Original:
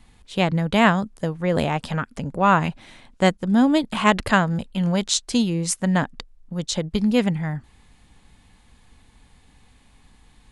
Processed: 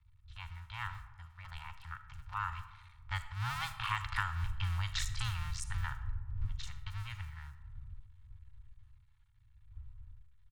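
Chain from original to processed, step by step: cycle switcher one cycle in 2, muted; wind noise 100 Hz -34 dBFS; Doppler pass-by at 4.58, 12 m/s, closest 6.1 m; elliptic band-stop 110–1100 Hz, stop band 60 dB; high shelf 5800 Hz -11.5 dB; comb 2.2 ms, depth 37%; compressor 6:1, threshold -32 dBFS, peak gain reduction 12 dB; bands offset in time lows, highs 40 ms, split 5900 Hz; digital reverb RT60 1.3 s, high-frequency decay 0.4×, pre-delay 15 ms, DRR 10.5 dB; gain +1 dB

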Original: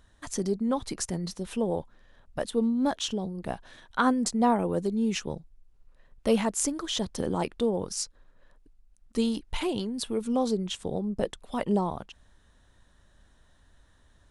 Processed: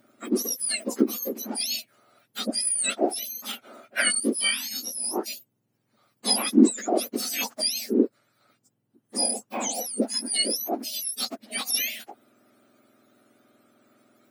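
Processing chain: spectrum mirrored in octaves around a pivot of 1500 Hz; 4.2–5.26 detuned doubles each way 35 cents; gain +5.5 dB

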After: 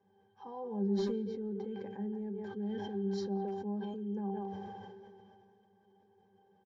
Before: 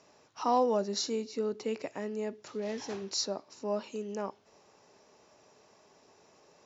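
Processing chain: high shelf 6300 Hz -8 dB; comb 6 ms, depth 35%; in parallel at 0 dB: limiter -27 dBFS, peak gain reduction 11 dB; on the sum: octave resonator G, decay 0.19 s; speakerphone echo 0.17 s, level -11 dB; on a send at -18 dB: reverb RT60 0.35 s, pre-delay 5 ms; on the sum: sustainer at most 24 dB/s

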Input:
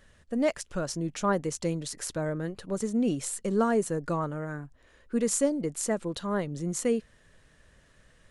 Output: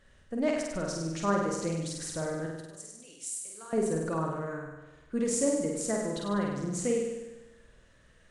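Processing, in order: 2.46–3.73 differentiator; flutter echo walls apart 8.5 m, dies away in 1.1 s; gain -4 dB; Nellymoser 44 kbps 22050 Hz

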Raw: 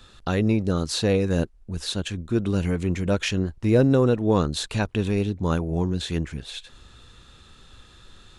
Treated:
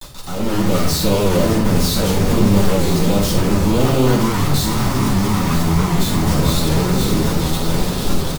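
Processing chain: CVSD 64 kbps; feedback echo 0.975 s, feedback 44%, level -12.5 dB; fuzz box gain 44 dB, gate -44 dBFS; Butterworth band-stop 2100 Hz, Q 0.99; compressor 12:1, threshold -37 dBFS, peak gain reduction 24 dB; 4.14–6.31 bell 560 Hz -9 dB 1 oct; companded quantiser 2-bit; AGC gain up to 9.5 dB; reverb RT60 0.55 s, pre-delay 3 ms, DRR -8.5 dB; record warp 78 rpm, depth 100 cents; gain -11 dB

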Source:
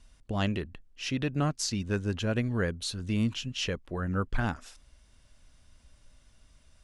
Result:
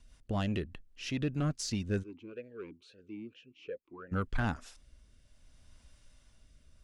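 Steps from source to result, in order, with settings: soft clip -21 dBFS, distortion -19 dB; rotary speaker horn 5 Hz, later 0.6 Hz, at 1.59; 2.02–4.11 vowel sweep e-u 1.6 Hz -> 3.2 Hz

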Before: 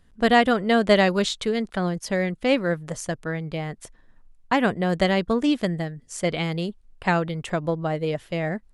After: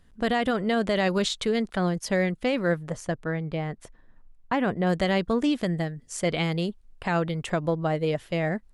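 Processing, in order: 2.87–4.87 high shelf 3500 Hz -10 dB; limiter -15.5 dBFS, peak gain reduction 10 dB

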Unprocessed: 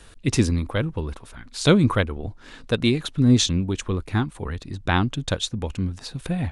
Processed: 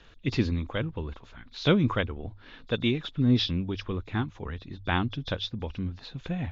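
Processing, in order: nonlinear frequency compression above 3300 Hz 1.5:1; resonant high shelf 5300 Hz -12 dB, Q 1.5; notches 50/100 Hz; gain -6 dB

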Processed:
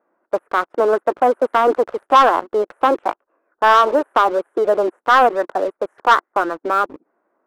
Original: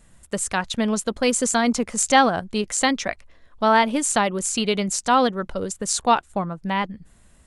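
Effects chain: formant shift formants +5 st; elliptic band-pass 320–1500 Hz, stop band 50 dB; sample leveller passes 2; gain +2 dB

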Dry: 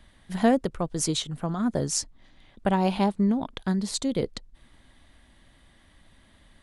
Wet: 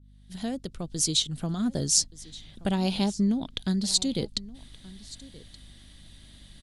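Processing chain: opening faded in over 1.48 s; bell 8200 Hz +5 dB 2.6 oct; in parallel at +0.5 dB: compressor, threshold -37 dBFS, peak gain reduction 17.5 dB; on the sum: hum 50 Hz, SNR 24 dB; ten-band EQ 500 Hz -4 dB, 1000 Hz -9 dB, 2000 Hz -5 dB, 4000 Hz +6 dB; echo 1.175 s -20 dB; gain -2 dB

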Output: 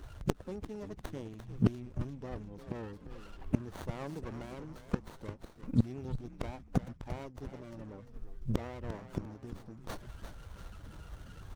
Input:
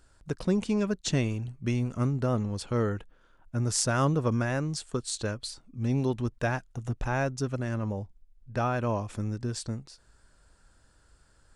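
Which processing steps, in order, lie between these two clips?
bin magnitudes rounded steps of 30 dB; flipped gate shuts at -28 dBFS, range -29 dB; frequency-shifting echo 0.347 s, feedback 44%, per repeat -100 Hz, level -9.5 dB; running maximum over 17 samples; gain +14 dB

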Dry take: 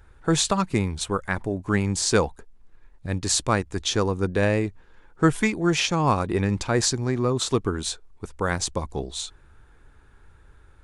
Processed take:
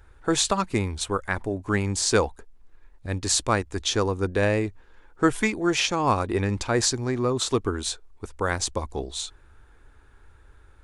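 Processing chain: bell 160 Hz -10 dB 0.5 oct

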